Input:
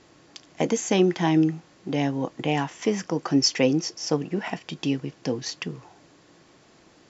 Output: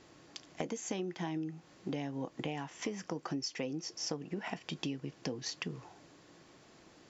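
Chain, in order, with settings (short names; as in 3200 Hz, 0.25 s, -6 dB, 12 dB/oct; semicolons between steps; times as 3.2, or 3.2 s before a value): compressor 12:1, threshold -30 dBFS, peak gain reduction 16 dB; gain -4 dB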